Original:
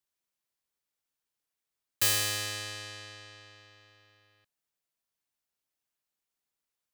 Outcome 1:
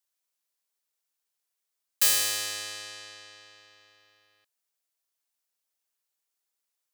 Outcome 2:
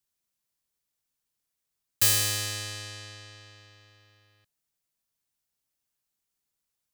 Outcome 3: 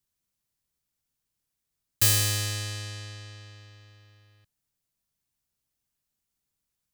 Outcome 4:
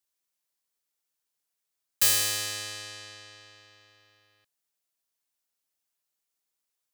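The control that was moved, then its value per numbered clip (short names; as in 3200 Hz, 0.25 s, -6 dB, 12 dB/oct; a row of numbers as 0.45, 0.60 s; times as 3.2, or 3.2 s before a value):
tone controls, bass: -14, +7, +15, -4 dB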